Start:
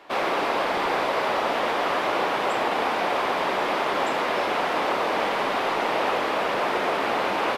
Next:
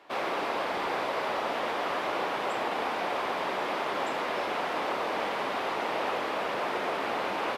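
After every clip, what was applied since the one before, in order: HPF 45 Hz; gain -6.5 dB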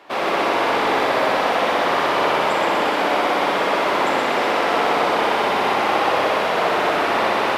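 multi-head echo 62 ms, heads first and second, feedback 75%, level -6.5 dB; gain +8.5 dB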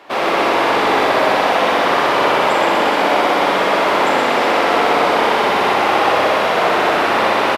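doubler 41 ms -11 dB; gain +4 dB

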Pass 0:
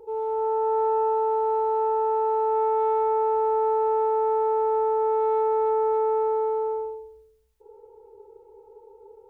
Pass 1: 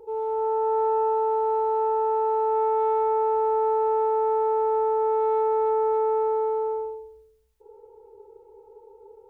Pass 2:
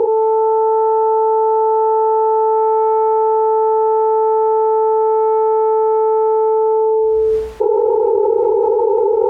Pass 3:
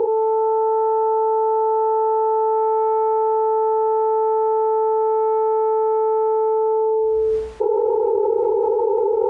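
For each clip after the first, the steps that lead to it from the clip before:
nothing audible
band-pass 550 Hz, Q 0.54; fast leveller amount 100%; gain +9 dB
downsampling 22050 Hz; gain -4.5 dB

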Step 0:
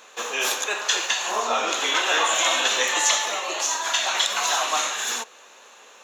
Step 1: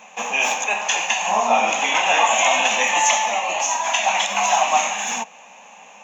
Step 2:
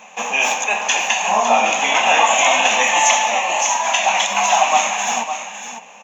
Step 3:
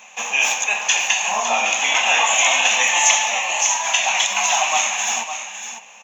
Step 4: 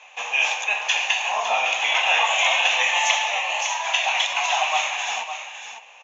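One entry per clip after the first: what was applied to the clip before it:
EQ curve 110 Hz 0 dB, 190 Hz +15 dB, 370 Hz -12 dB, 800 Hz +9 dB, 1400 Hz -10 dB, 2500 Hz +5 dB, 4200 Hz -15 dB, 6600 Hz 0 dB, 9600 Hz -27 dB, 15000 Hz -9 dB; gain +4 dB
echo 0.557 s -9.5 dB; gain +2.5 dB
tilt shelf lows -6.5 dB, about 1200 Hz; gain -4 dB
Chebyshev band-pass 510–3900 Hz, order 2; gain -2 dB

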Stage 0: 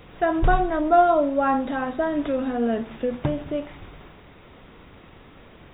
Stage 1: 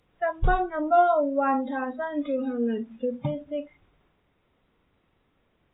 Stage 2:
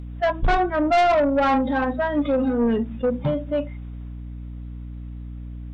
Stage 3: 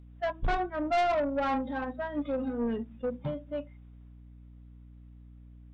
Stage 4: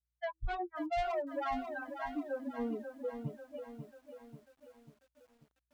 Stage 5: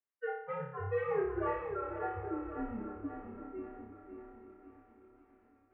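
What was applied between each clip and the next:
spectral noise reduction 19 dB; gain -2.5 dB
buzz 60 Hz, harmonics 5, -43 dBFS -7 dB/oct; soft clip -23.5 dBFS, distortion -9 dB; attack slew limiter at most 450 dB/s; gain +9 dB
upward expander 1.5:1, over -31 dBFS; gain -8.5 dB
per-bin expansion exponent 3; compressor 2:1, threshold -38 dBFS, peak gain reduction 7 dB; lo-fi delay 0.541 s, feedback 55%, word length 11-bit, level -8 dB; gain +1 dB
regenerating reverse delay 0.43 s, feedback 60%, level -12.5 dB; flutter echo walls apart 5 m, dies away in 0.66 s; mistuned SSB -210 Hz 360–2400 Hz

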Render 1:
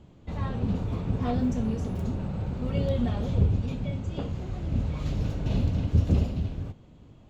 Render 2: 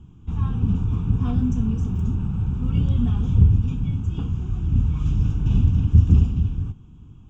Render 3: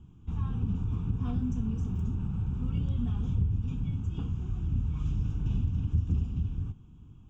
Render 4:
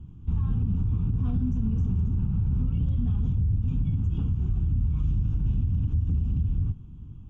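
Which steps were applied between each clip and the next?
low shelf 240 Hz +10 dB; fixed phaser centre 2900 Hz, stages 8
compressor 2.5:1, threshold -20 dBFS, peak gain reduction 8 dB; gain -6.5 dB
low shelf 260 Hz +10.5 dB; limiter -18.5 dBFS, peak gain reduction 11 dB; air absorption 57 m

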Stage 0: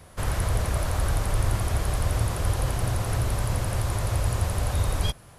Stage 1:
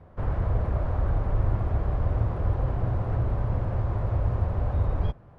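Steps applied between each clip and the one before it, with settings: Bessel low-pass 860 Hz, order 2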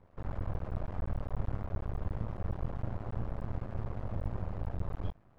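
half-wave rectifier; gain -7 dB

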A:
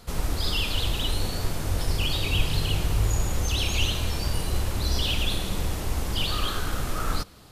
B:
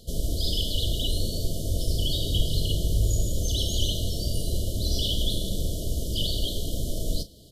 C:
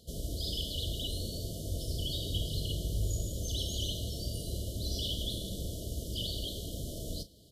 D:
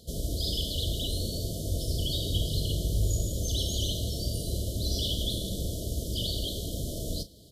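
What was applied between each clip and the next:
crackle 24/s -48 dBFS; FFT band-reject 690–2900 Hz; doubler 36 ms -13 dB
HPF 43 Hz; gain -7.5 dB
notch 2800 Hz, Q 6; gain +5.5 dB

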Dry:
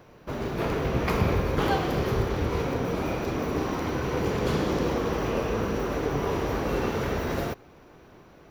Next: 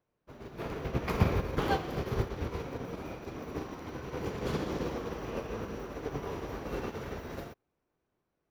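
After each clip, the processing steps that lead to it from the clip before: upward expander 2.5:1, over -40 dBFS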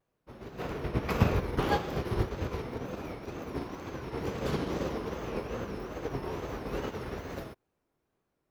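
wow and flutter 150 cents; gain +1.5 dB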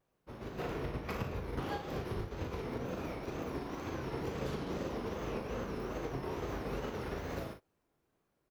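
compressor 10:1, threshold -35 dBFS, peak gain reduction 17 dB; on a send: early reflections 38 ms -7 dB, 59 ms -13 dB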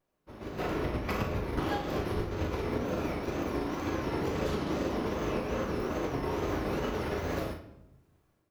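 AGC gain up to 7.5 dB; on a send at -7 dB: reverb RT60 0.85 s, pre-delay 3 ms; on the sum: gain -1.5 dB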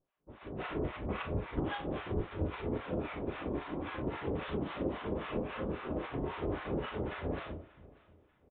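harmonic tremolo 3.7 Hz, depth 100%, crossover 820 Hz; feedback echo 0.588 s, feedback 39%, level -23 dB; downsampling 8000 Hz

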